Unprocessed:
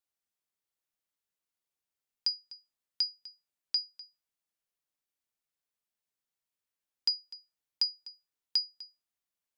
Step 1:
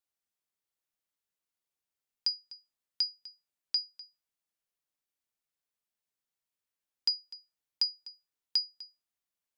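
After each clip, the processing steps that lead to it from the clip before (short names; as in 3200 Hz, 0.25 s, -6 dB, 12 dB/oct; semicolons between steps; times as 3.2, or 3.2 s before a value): nothing audible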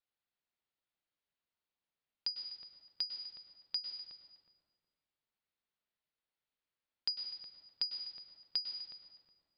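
steep low-pass 4600 Hz 48 dB/oct; darkening echo 0.367 s, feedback 27%, low-pass 1100 Hz, level -8.5 dB; on a send at -5 dB: reverb RT60 1.4 s, pre-delay 96 ms; on the sum: gain -1 dB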